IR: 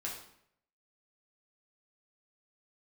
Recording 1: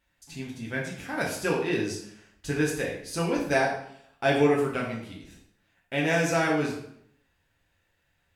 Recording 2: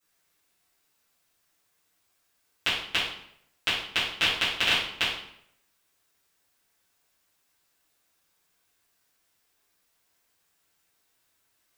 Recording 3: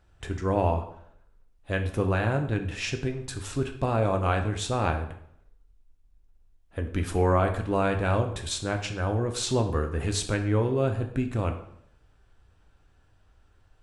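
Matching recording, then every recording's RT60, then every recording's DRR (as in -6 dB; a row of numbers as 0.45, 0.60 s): 1; 0.70, 0.70, 0.70 s; -4.0, -13.0, 4.5 dB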